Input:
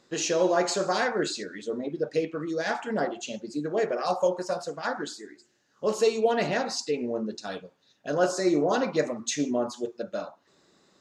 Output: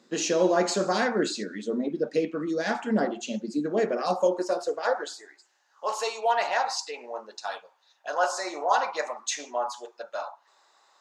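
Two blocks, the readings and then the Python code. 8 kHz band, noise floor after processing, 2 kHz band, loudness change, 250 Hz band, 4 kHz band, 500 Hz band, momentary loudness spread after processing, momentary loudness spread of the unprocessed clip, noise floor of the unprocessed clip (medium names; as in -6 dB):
0.0 dB, -66 dBFS, +1.0 dB, 0.0 dB, -0.5 dB, 0.0 dB, -1.0 dB, 12 LU, 11 LU, -67 dBFS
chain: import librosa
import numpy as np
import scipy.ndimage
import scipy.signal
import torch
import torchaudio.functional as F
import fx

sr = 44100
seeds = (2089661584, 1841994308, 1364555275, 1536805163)

y = fx.filter_sweep_highpass(x, sr, from_hz=210.0, to_hz=870.0, start_s=4.14, end_s=5.39, q=3.2)
y = fx.low_shelf(y, sr, hz=230.0, db=-4.5)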